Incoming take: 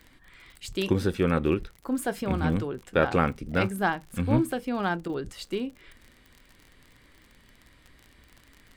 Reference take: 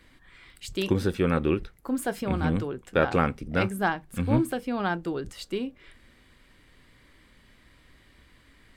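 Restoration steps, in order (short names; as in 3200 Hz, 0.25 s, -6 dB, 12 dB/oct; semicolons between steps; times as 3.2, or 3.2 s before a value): de-click; interpolate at 5.08, 12 ms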